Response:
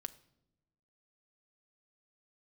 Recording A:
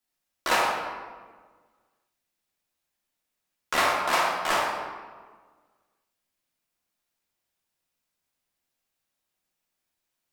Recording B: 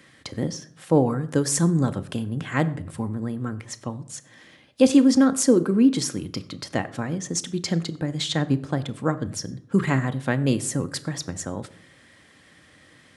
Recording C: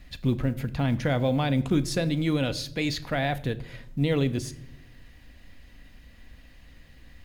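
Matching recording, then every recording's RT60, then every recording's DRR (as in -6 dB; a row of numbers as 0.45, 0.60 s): C; 1.5 s, 0.55 s, not exponential; -4.0, 10.0, 10.5 dB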